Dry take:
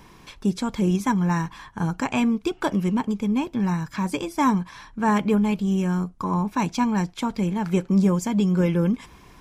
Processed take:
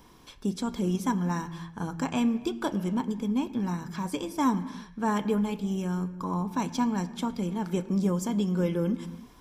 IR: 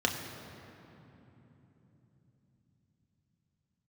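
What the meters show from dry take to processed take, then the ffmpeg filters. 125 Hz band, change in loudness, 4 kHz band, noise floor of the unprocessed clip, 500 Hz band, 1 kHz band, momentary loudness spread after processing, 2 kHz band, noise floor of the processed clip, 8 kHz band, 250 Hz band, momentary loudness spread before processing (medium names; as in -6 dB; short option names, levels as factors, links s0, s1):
-7.0 dB, -6.0 dB, -4.0 dB, -50 dBFS, -5.0 dB, -6.0 dB, 7 LU, -8.0 dB, -52 dBFS, -3.5 dB, -6.0 dB, 7 LU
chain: -filter_complex "[0:a]highshelf=f=9500:g=7,asplit=2[s0][s1];[1:a]atrim=start_sample=2205,afade=t=out:st=0.38:d=0.01,atrim=end_sample=17199[s2];[s1][s2]afir=irnorm=-1:irlink=0,volume=0.158[s3];[s0][s3]amix=inputs=2:normalize=0,volume=0.422"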